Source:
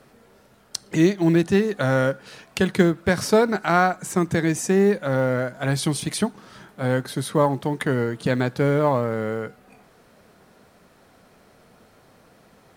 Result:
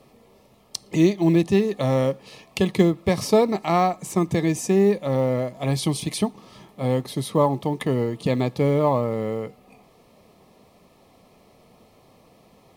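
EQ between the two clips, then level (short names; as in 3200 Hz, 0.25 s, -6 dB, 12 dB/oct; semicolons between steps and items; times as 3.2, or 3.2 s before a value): Butterworth band-stop 1500 Hz, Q 2.9; bell 8000 Hz -3 dB 0.92 oct; notch 1900 Hz, Q 9.6; 0.0 dB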